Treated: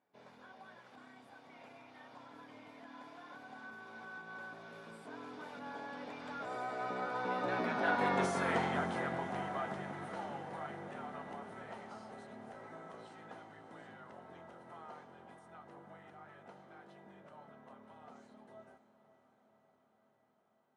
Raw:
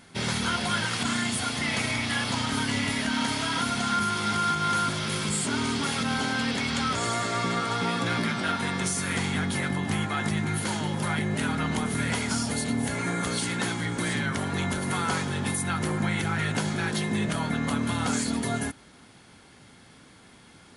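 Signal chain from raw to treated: Doppler pass-by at 8.28 s, 25 m/s, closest 10 m; band-pass filter 670 Hz, Q 1.6; echo that smears into a reverb 564 ms, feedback 69%, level -15 dB; trim +7 dB

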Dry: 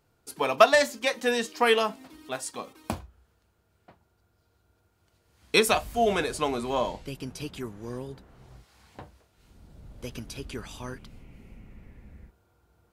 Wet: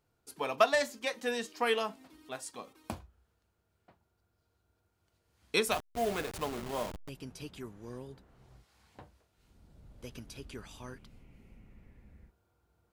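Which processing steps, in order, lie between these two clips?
5.71–7.09 s: send-on-delta sampling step -28 dBFS; trim -8 dB

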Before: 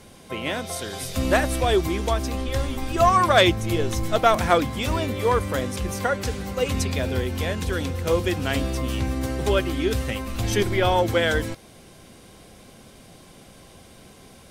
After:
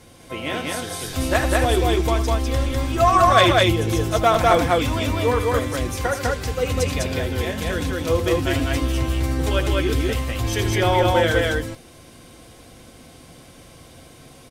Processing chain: comb of notches 200 Hz; on a send: loudspeakers at several distances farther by 27 m -11 dB, 69 m -1 dB; on the sum: trim +1 dB

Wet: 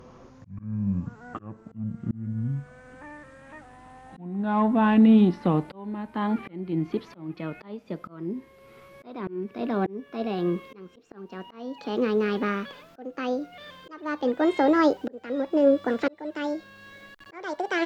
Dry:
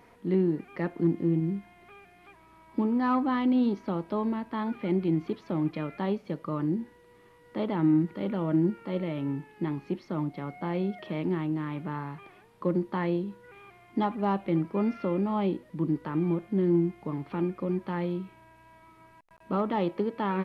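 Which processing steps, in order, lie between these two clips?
gliding tape speed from 52% -> 177%; slow attack 776 ms; trim +8 dB

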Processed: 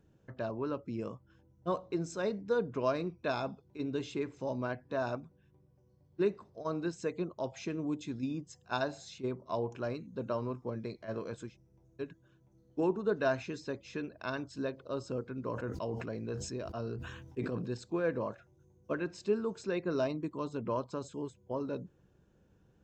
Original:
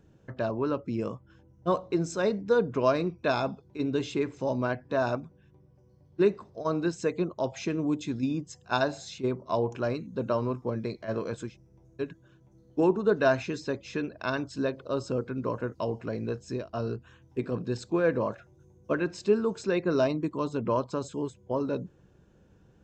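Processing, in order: 15.49–17.74 s: decay stretcher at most 41 dB/s; trim -7 dB

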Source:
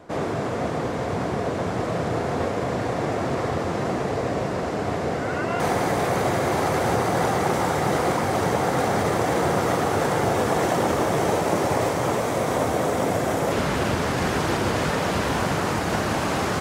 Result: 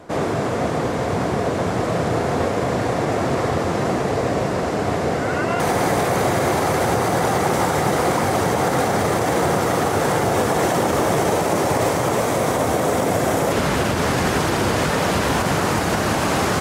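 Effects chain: peaking EQ 12 kHz +4 dB 1.4 oct; loudness maximiser +13 dB; trim -8.5 dB

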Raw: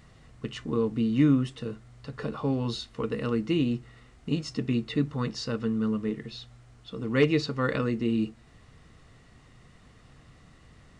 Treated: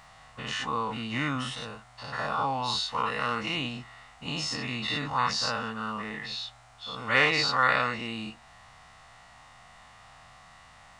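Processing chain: every event in the spectrogram widened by 120 ms; resonant low shelf 550 Hz -12 dB, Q 3; trim +1.5 dB

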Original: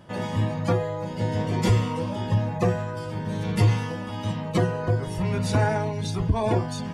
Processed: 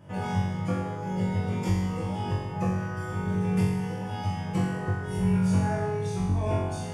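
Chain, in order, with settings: graphic EQ with 31 bands 100 Hz +10 dB, 160 Hz +7 dB, 4 kHz -12 dB; compression, threshold -20 dBFS, peak gain reduction 12 dB; flutter echo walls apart 3.7 m, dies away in 1.1 s; trim -6.5 dB

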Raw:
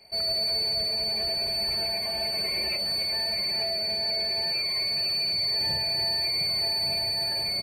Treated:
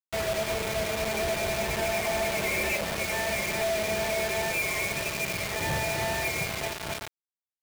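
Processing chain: fade out at the end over 1.39 s; resampled via 8 kHz; companded quantiser 2-bit

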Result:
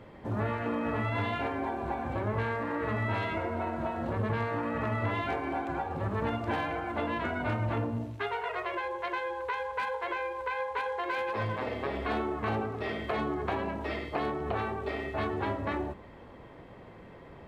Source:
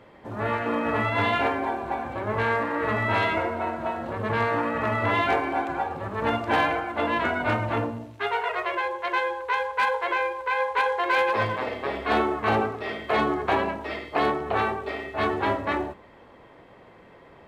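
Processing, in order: compression 4:1, threshold -30 dBFS, peak gain reduction 10 dB; bass shelf 260 Hz +9.5 dB; trim -2 dB

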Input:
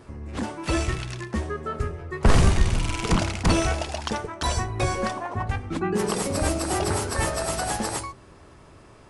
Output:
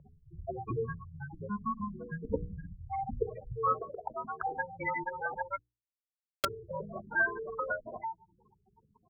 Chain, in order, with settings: mistuned SSB -210 Hz 160–2700 Hz; bass shelf 110 Hz +10 dB; speakerphone echo 160 ms, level -30 dB; spectral gate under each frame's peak -10 dB strong; in parallel at -2 dB: compression, threshold -32 dBFS, peak gain reduction 18 dB; on the sum: band-pass sweep 550 Hz -> 1.8 kHz, 3.29–3.86 s; 5.59–6.45 s: companded quantiser 2-bit; hum notches 60/120/180/240/300/360/420/480 Hz; trim +7.5 dB

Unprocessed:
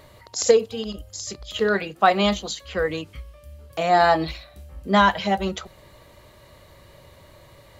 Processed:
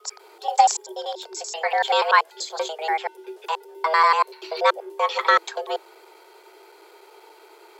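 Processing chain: slices played last to first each 96 ms, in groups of 4; frequency shift +320 Hz

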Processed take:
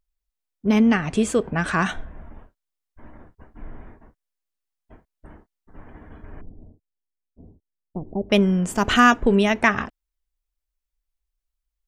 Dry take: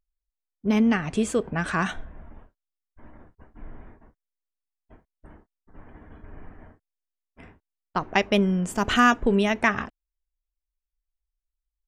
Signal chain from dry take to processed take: 6.41–8.30 s: Gaussian low-pass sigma 17 samples; trim +3.5 dB

